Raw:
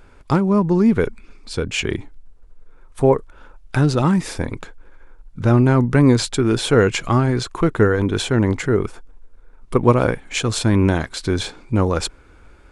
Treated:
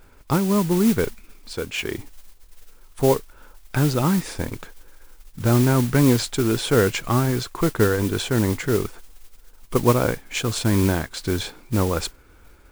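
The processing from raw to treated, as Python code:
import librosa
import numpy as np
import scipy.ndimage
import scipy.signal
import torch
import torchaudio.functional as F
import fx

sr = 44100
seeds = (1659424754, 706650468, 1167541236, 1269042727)

y = fx.bass_treble(x, sr, bass_db=-7, treble_db=-4, at=(1.53, 1.98))
y = fx.mod_noise(y, sr, seeds[0], snr_db=15)
y = F.gain(torch.from_numpy(y), -3.5).numpy()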